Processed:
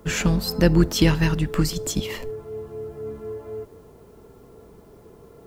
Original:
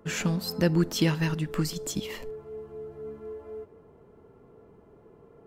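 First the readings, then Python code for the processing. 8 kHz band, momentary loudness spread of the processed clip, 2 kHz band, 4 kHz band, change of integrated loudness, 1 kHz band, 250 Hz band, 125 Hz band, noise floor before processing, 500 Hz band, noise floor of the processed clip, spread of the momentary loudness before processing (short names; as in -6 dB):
+6.0 dB, 17 LU, +6.0 dB, +6.0 dB, +6.5 dB, +6.0 dB, +6.0 dB, +6.5 dB, -56 dBFS, +6.0 dB, -49 dBFS, 17 LU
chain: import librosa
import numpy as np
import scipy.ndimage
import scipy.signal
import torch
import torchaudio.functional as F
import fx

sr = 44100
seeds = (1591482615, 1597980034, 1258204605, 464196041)

y = fx.octave_divider(x, sr, octaves=2, level_db=-5.0)
y = fx.quant_dither(y, sr, seeds[0], bits=12, dither='triangular')
y = y * 10.0 ** (6.0 / 20.0)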